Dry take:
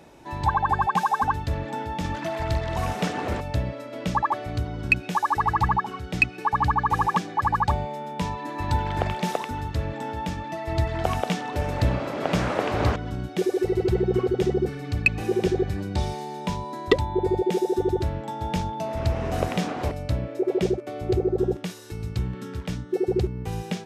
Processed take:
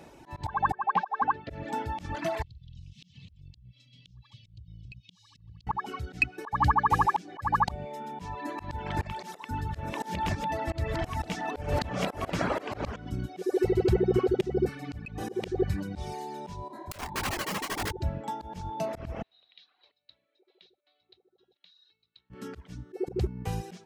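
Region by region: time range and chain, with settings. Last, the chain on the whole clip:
0.73–1.5 BPF 280–7400 Hz + air absorption 320 m
2.42–5.67 elliptic band-stop 150–3300 Hz + compressor 8:1, threshold -40 dBFS + air absorption 160 m
9.03–12.6 reverse delay 0.661 s, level -3 dB + notches 60/120/180/240/300/360/420 Hz
16.68–17.91 high shelf 2300 Hz -4 dB + wrapped overs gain 21 dB + detuned doubles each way 58 cents
19.22–22.3 upward compressor, threshold -31 dBFS + band-pass 3900 Hz, Q 14 + air absorption 220 m
whole clip: notch 3600 Hz, Q 25; reverb removal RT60 0.8 s; auto swell 0.185 s

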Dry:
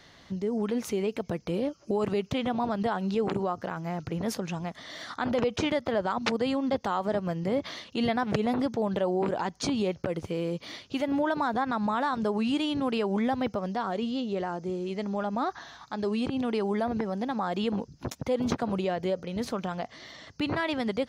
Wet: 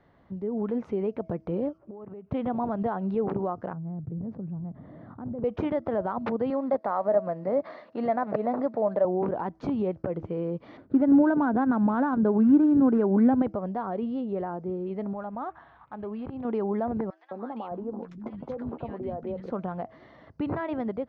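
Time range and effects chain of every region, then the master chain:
1.78–2.32 LPF 2200 Hz + compressor 16:1, threshold -38 dBFS
3.73–5.44 band-pass 130 Hz, Q 1.4 + fast leveller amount 50%
6.5–9.05 CVSD 64 kbps + speaker cabinet 250–5800 Hz, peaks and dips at 370 Hz -4 dB, 620 Hz +9 dB, 1200 Hz +3 dB, 1900 Hz +4 dB, 3100 Hz -7 dB, 4400 Hz +5 dB
10.77–13.42 median filter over 15 samples + small resonant body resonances 270/1500 Hz, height 10 dB, ringing for 20 ms
15.13–16.45 bell 310 Hz -8 dB 2.3 oct + decimation joined by straight lines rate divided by 6×
17.1–19.5 compressor 4:1, threshold -29 dBFS + doubler 13 ms -11 dB + three bands offset in time highs, mids, lows 0.21/0.61 s, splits 210/1300 Hz
whole clip: AGC gain up to 4 dB; LPF 1100 Hz 12 dB/oct; de-hum 323.6 Hz, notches 2; gain -3.5 dB

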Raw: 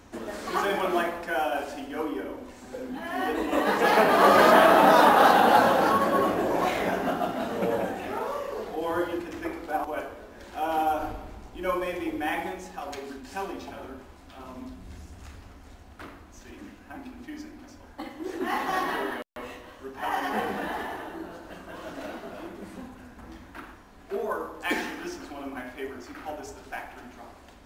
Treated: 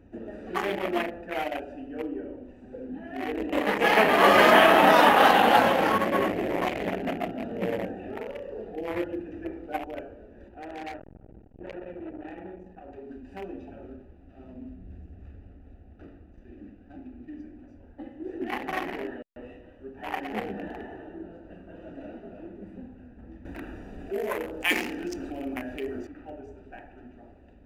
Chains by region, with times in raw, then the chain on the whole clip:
10.48–13.11 high shelf 2500 Hz -9.5 dB + core saturation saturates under 2300 Hz
13.86–17.4 switching dead time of 0.15 ms + high shelf 6000 Hz -9 dB + notch 950 Hz, Q 11
23.45–26.07 tone controls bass -3 dB, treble +10 dB + fast leveller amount 50%
whole clip: Wiener smoothing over 41 samples; band shelf 2400 Hz +8 dB 1 oct

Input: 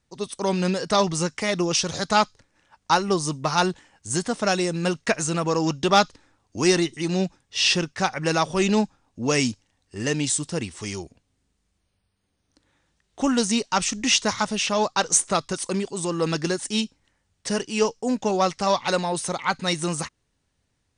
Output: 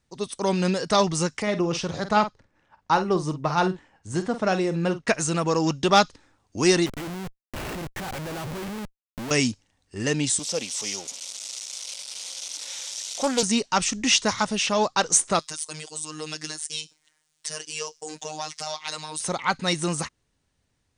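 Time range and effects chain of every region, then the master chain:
1.42–5.08 LPF 1700 Hz 6 dB/oct + doubler 48 ms -11 dB
6.86–9.31 CVSD 16 kbps + compressor 2.5:1, threshold -29 dBFS + Schmitt trigger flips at -42 dBFS
10.39–13.43 switching spikes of -22 dBFS + speaker cabinet 300–8000 Hz, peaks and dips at 360 Hz -10 dB, 540 Hz +7 dB, 1200 Hz -4 dB, 1700 Hz -9 dB, 3500 Hz +3 dB, 5700 Hz +6 dB + Doppler distortion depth 0.19 ms
15.39–19.2 tilt +3.5 dB/oct + robotiser 154 Hz + compressor 2:1, threshold -33 dBFS
whole clip: dry

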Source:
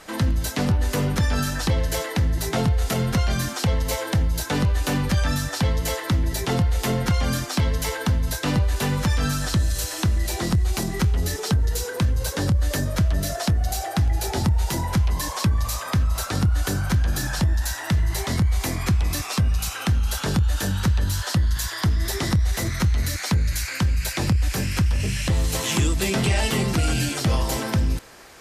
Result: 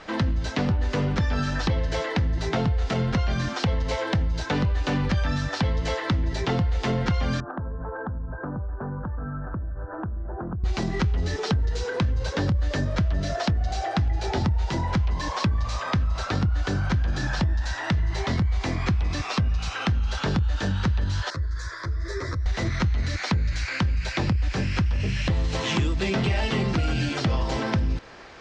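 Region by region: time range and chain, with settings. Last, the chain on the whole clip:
7.4–10.64 steep low-pass 1600 Hz 96 dB/oct + compressor, threshold -31 dBFS
21.3–22.46 compressor, threshold -20 dBFS + fixed phaser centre 790 Hz, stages 6 + ensemble effect
whole clip: Bessel low-pass 3800 Hz, order 6; compressor 2.5:1, threshold -25 dBFS; gain +2.5 dB

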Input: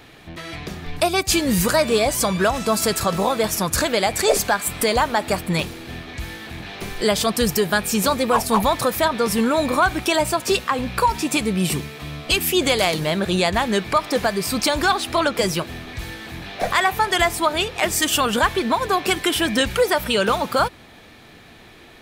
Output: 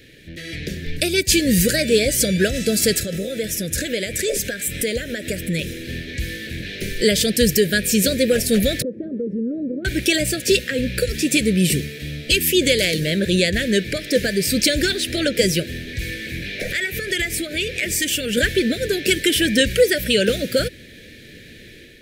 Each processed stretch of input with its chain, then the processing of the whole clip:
3–5.84 notch 4500 Hz, Q 9.4 + compressor 2:1, threshold -27 dBFS
8.82–9.85 Butterworth band-pass 300 Hz, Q 1.1 + compressor 4:1, threshold -26 dBFS
16–18.37 bell 2300 Hz +6 dB 0.3 oct + compressor 2.5:1, threshold -24 dBFS
whole clip: Chebyshev band-stop 540–1700 Hz, order 3; AGC gain up to 5 dB

